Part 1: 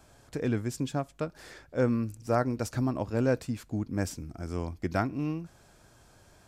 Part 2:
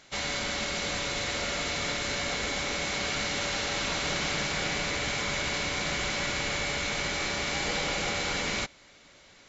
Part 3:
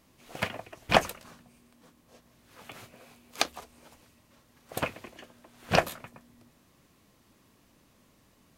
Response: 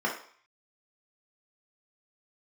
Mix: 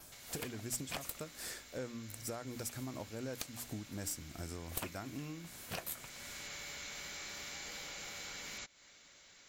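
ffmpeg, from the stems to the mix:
-filter_complex "[0:a]bandreject=f=60:t=h:w=6,bandreject=f=120:t=h:w=6,bandreject=f=180:t=h:w=6,bandreject=f=240:t=h:w=6,bandreject=f=300:t=h:w=6,volume=-1dB[a];[1:a]equalizer=f=1.6k:w=1.3:g=3.5,acompressor=threshold=-37dB:ratio=6,volume=-10.5dB,afade=t=in:st=5.95:d=0.53:silence=0.281838[b];[2:a]volume=-4.5dB[c];[a][c]amix=inputs=2:normalize=0,tremolo=f=2.7:d=0.54,acompressor=threshold=-40dB:ratio=6,volume=0dB[d];[b][d]amix=inputs=2:normalize=0,aemphasis=mode=production:type=75fm,aeval=exprs='clip(val(0),-1,0.0158)':c=same,adynamicequalizer=threshold=0.00158:dfrequency=7900:dqfactor=6:tfrequency=7900:tqfactor=6:attack=5:release=100:ratio=0.375:range=2:mode=boostabove:tftype=bell"

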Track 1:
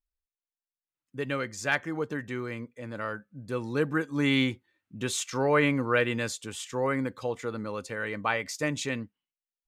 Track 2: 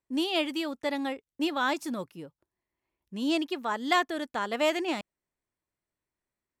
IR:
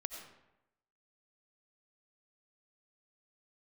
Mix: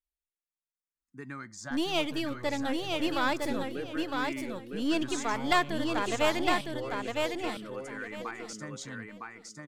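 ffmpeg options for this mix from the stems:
-filter_complex "[0:a]acompressor=threshold=-28dB:ratio=6,asplit=2[a][b];[b]afreqshift=-0.28[c];[a][c]amix=inputs=2:normalize=1,volume=-5dB,asplit=2[d][e];[e]volume=-3.5dB[f];[1:a]aeval=exprs='if(lt(val(0),0),0.447*val(0),val(0))':c=same,adelay=1600,volume=0.5dB,asplit=3[g][h][i];[h]volume=-19dB[j];[i]volume=-3dB[k];[2:a]atrim=start_sample=2205[l];[j][l]afir=irnorm=-1:irlink=0[m];[f][k]amix=inputs=2:normalize=0,aecho=0:1:959|1918|2877:1|0.21|0.0441[n];[d][g][m][n]amix=inputs=4:normalize=0"

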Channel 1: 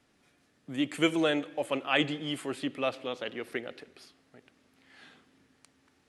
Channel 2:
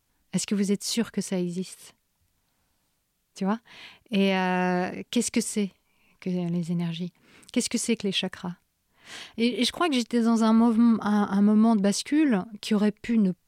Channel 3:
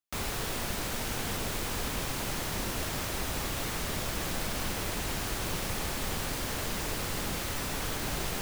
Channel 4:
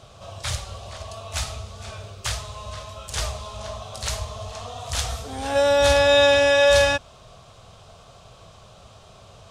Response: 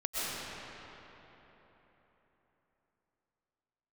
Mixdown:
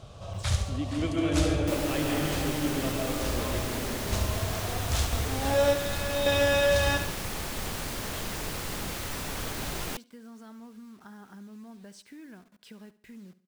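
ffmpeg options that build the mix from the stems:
-filter_complex "[0:a]equalizer=f=99:w=0.3:g=14,volume=-10.5dB,asplit=2[a][b];[b]volume=-3.5dB[c];[1:a]equalizer=f=1.6k:t=o:w=0.28:g=9,acompressor=threshold=-24dB:ratio=6,acrusher=bits=6:mix=0:aa=0.000001,volume=-20dB,asplit=3[d][e][f];[e]volume=-17dB[g];[2:a]adelay=1550,volume=-1dB[h];[3:a]lowshelf=f=390:g=8.5,alimiter=limit=-11.5dB:level=0:latency=1,volume=-5dB,asplit=2[i][j];[j]volume=-8dB[k];[f]apad=whole_len=419104[l];[i][l]sidechaingate=range=-17dB:threshold=-58dB:ratio=16:detection=peak[m];[a][d]amix=inputs=2:normalize=0,acompressor=threshold=-41dB:ratio=6,volume=0dB[n];[4:a]atrim=start_sample=2205[o];[c][o]afir=irnorm=-1:irlink=0[p];[g][k]amix=inputs=2:normalize=0,aecho=0:1:70|140|210|280|350|420:1|0.4|0.16|0.064|0.0256|0.0102[q];[h][m][n][p][q]amix=inputs=5:normalize=0"

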